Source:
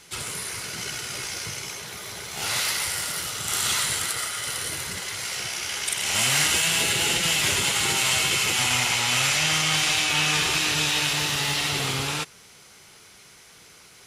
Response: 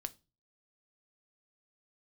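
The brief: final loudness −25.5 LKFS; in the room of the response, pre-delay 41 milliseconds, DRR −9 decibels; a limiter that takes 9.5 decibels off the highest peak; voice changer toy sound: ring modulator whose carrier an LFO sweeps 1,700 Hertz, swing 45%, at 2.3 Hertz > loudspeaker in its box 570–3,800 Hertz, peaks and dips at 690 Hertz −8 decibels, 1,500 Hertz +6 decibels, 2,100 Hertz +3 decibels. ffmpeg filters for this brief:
-filter_complex "[0:a]alimiter=limit=-16.5dB:level=0:latency=1,asplit=2[link_01][link_02];[1:a]atrim=start_sample=2205,adelay=41[link_03];[link_02][link_03]afir=irnorm=-1:irlink=0,volume=11.5dB[link_04];[link_01][link_04]amix=inputs=2:normalize=0,aeval=exprs='val(0)*sin(2*PI*1700*n/s+1700*0.45/2.3*sin(2*PI*2.3*n/s))':channel_layout=same,highpass=570,equalizer=frequency=690:width_type=q:width=4:gain=-8,equalizer=frequency=1500:width_type=q:width=4:gain=6,equalizer=frequency=2100:width_type=q:width=4:gain=3,lowpass=frequency=3800:width=0.5412,lowpass=frequency=3800:width=1.3066,volume=-4dB"

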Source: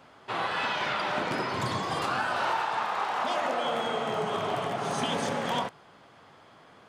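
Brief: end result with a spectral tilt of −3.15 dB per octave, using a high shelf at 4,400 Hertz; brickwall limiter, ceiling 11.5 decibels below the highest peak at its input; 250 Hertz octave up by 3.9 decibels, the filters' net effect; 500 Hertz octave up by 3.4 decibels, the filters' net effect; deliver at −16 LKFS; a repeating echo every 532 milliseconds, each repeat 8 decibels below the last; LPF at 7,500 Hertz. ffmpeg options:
ffmpeg -i in.wav -af "lowpass=7500,equalizer=frequency=250:width_type=o:gain=4,equalizer=frequency=500:width_type=o:gain=3.5,highshelf=frequency=4400:gain=-7.5,alimiter=level_in=2dB:limit=-24dB:level=0:latency=1,volume=-2dB,aecho=1:1:532|1064|1596|2128|2660:0.398|0.159|0.0637|0.0255|0.0102,volume=18dB" out.wav

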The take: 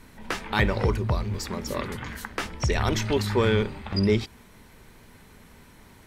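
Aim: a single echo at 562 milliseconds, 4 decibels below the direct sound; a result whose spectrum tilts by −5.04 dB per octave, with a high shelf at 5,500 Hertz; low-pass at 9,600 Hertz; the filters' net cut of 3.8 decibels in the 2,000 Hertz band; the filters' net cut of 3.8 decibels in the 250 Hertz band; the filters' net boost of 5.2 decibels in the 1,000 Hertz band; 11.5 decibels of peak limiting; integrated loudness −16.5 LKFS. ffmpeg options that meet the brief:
ffmpeg -i in.wav -af "lowpass=9600,equalizer=frequency=250:width_type=o:gain=-5.5,equalizer=frequency=1000:width_type=o:gain=8.5,equalizer=frequency=2000:width_type=o:gain=-8.5,highshelf=frequency=5500:gain=3,alimiter=limit=-21dB:level=0:latency=1,aecho=1:1:562:0.631,volume=14.5dB" out.wav

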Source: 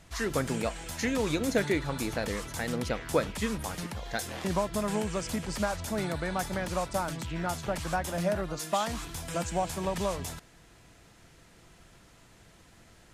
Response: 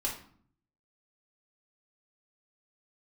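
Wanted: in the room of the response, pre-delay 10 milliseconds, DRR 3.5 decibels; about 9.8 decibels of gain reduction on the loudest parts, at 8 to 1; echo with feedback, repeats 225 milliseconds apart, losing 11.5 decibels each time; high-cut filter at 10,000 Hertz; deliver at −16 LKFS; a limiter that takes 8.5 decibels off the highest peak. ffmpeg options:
-filter_complex "[0:a]lowpass=10000,acompressor=threshold=-31dB:ratio=8,alimiter=level_in=3.5dB:limit=-24dB:level=0:latency=1,volume=-3.5dB,aecho=1:1:225|450|675:0.266|0.0718|0.0194,asplit=2[link_01][link_02];[1:a]atrim=start_sample=2205,adelay=10[link_03];[link_02][link_03]afir=irnorm=-1:irlink=0,volume=-7.5dB[link_04];[link_01][link_04]amix=inputs=2:normalize=0,volume=20dB"

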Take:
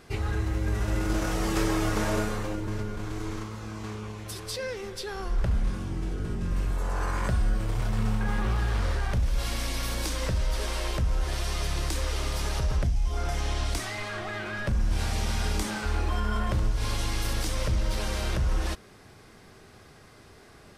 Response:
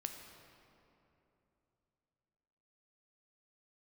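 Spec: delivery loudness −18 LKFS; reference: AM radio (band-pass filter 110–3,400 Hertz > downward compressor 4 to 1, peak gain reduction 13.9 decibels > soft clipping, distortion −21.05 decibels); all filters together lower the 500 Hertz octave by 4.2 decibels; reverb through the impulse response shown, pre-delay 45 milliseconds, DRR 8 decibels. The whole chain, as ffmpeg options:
-filter_complex "[0:a]equalizer=frequency=500:width_type=o:gain=-5.5,asplit=2[link_01][link_02];[1:a]atrim=start_sample=2205,adelay=45[link_03];[link_02][link_03]afir=irnorm=-1:irlink=0,volume=-6.5dB[link_04];[link_01][link_04]amix=inputs=2:normalize=0,highpass=110,lowpass=3400,acompressor=threshold=-42dB:ratio=4,asoftclip=threshold=-35.5dB,volume=27.5dB"

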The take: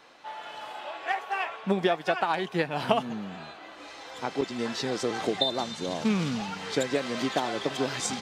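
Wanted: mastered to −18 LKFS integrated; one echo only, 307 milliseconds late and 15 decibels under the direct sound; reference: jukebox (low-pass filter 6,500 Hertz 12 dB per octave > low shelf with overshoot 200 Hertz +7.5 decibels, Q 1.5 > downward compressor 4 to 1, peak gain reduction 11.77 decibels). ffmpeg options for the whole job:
ffmpeg -i in.wav -af "lowpass=6500,lowshelf=frequency=200:width_type=q:width=1.5:gain=7.5,aecho=1:1:307:0.178,acompressor=threshold=-31dB:ratio=4,volume=17.5dB" out.wav

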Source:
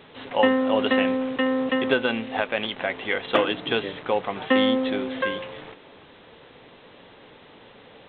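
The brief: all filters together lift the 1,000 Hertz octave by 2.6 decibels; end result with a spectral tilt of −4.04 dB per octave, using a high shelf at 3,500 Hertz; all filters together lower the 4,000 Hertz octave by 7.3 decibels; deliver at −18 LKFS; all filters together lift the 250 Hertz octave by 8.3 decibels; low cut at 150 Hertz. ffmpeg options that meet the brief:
ffmpeg -i in.wav -af "highpass=150,equalizer=frequency=250:width_type=o:gain=9,equalizer=frequency=1000:width_type=o:gain=3.5,highshelf=frequency=3500:gain=-5,equalizer=frequency=4000:width_type=o:gain=-8,volume=1.5dB" out.wav

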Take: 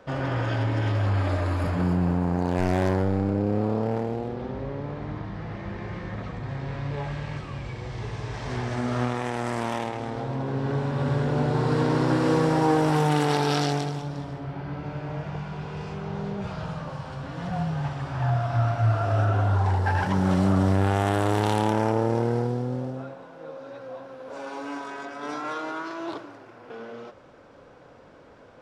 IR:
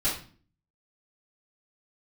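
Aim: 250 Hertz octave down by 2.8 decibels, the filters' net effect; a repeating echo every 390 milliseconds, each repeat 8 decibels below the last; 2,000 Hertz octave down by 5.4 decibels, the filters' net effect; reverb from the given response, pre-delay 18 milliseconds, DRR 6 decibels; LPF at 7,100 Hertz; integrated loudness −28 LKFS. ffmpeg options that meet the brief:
-filter_complex "[0:a]lowpass=7100,equalizer=frequency=250:width_type=o:gain=-4,equalizer=frequency=2000:width_type=o:gain=-7.5,aecho=1:1:390|780|1170|1560|1950:0.398|0.159|0.0637|0.0255|0.0102,asplit=2[link_01][link_02];[1:a]atrim=start_sample=2205,adelay=18[link_03];[link_02][link_03]afir=irnorm=-1:irlink=0,volume=-15dB[link_04];[link_01][link_04]amix=inputs=2:normalize=0,volume=-2dB"

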